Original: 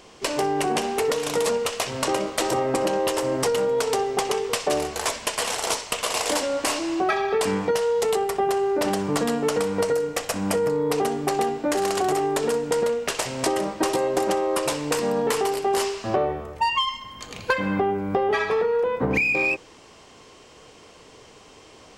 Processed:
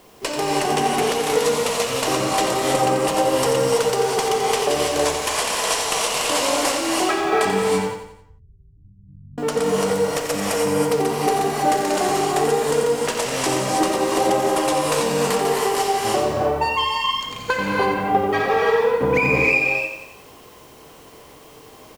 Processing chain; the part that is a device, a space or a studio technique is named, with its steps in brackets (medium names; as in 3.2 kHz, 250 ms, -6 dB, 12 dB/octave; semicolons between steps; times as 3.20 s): plain cassette with noise reduction switched in (tape noise reduction on one side only decoder only; wow and flutter 28 cents; white noise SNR 33 dB); 7.62–9.38 s: inverse Chebyshev low-pass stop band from 570 Hz, stop band 80 dB; feedback delay 88 ms, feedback 46%, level -8 dB; gated-style reverb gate 350 ms rising, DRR -2 dB